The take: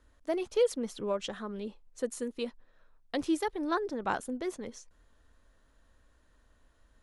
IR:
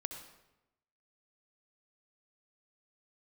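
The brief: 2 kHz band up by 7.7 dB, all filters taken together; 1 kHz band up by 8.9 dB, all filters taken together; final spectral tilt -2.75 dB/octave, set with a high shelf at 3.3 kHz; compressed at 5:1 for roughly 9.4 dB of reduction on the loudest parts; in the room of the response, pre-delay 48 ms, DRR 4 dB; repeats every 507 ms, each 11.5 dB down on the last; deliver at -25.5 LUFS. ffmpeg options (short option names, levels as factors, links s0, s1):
-filter_complex "[0:a]equalizer=f=1000:t=o:g=9,equalizer=f=2000:t=o:g=4,highshelf=f=3300:g=8.5,acompressor=threshold=0.0355:ratio=5,aecho=1:1:507|1014|1521:0.266|0.0718|0.0194,asplit=2[s0][s1];[1:a]atrim=start_sample=2205,adelay=48[s2];[s1][s2]afir=irnorm=-1:irlink=0,volume=0.708[s3];[s0][s3]amix=inputs=2:normalize=0,volume=2.66"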